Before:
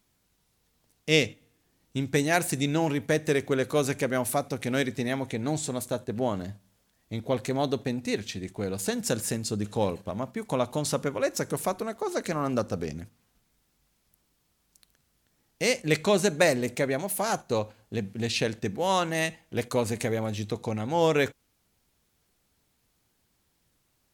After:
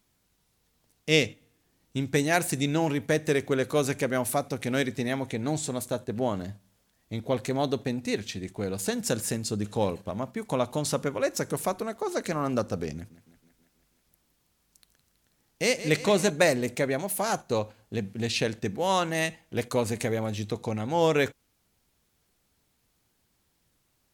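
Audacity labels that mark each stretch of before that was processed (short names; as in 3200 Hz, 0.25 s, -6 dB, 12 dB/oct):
12.940000	16.300000	thinning echo 0.162 s, feedback 72%, high-pass 160 Hz, level -13 dB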